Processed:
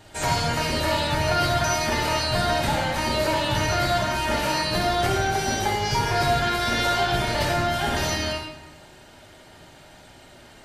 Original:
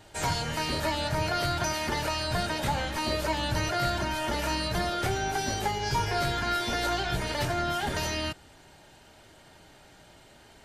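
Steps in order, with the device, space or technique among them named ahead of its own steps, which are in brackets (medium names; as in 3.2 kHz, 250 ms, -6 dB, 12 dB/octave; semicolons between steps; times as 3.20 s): bathroom (reverberation RT60 0.95 s, pre-delay 39 ms, DRR -0.5 dB); trim +3 dB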